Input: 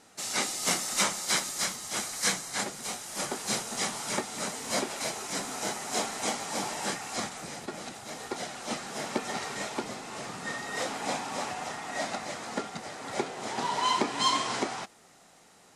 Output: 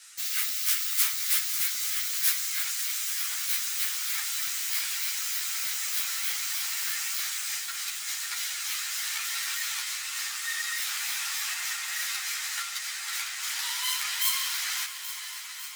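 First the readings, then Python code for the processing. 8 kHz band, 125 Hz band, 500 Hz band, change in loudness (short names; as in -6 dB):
+4.0 dB, under -40 dB, under -30 dB, +4.0 dB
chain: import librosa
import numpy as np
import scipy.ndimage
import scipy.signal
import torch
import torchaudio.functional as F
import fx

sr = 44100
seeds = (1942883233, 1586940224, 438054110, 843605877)

p1 = fx.tracing_dist(x, sr, depth_ms=0.38)
p2 = scipy.signal.sosfilt(scipy.signal.butter(4, 1500.0, 'highpass', fs=sr, output='sos'), p1)
p3 = fx.tilt_eq(p2, sr, slope=2.5)
p4 = fx.over_compress(p3, sr, threshold_db=-37.0, ratio=-1.0)
p5 = p3 + (p4 * 10.0 ** (-1.5 / 20.0))
p6 = fx.quant_float(p5, sr, bits=6)
p7 = p6 + fx.echo_heads(p6, sr, ms=275, heads='second and third', feedback_pct=66, wet_db=-12.5, dry=0)
y = fx.ensemble(p7, sr)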